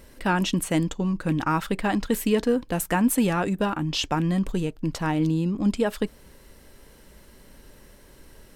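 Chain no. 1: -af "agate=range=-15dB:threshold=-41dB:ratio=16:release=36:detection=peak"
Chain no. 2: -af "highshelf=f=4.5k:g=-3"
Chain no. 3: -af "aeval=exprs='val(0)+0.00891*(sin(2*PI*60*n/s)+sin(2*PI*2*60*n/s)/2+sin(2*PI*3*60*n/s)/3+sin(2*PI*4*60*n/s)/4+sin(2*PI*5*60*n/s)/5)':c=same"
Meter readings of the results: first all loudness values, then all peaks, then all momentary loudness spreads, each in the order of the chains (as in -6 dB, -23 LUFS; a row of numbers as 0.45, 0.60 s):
-25.0, -25.0, -25.0 LUFS; -10.5, -10.5, -10.5 dBFS; 4, 5, 21 LU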